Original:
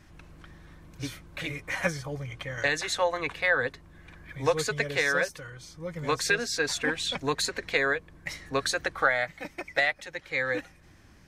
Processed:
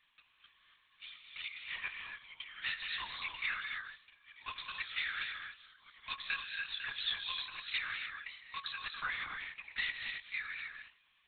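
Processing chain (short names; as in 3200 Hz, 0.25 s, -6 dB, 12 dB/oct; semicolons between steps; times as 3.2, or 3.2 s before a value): rippled Chebyshev high-pass 780 Hz, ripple 6 dB; differentiator; non-linear reverb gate 0.31 s rising, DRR 3.5 dB; LPC vocoder at 8 kHz whisper; gain +4 dB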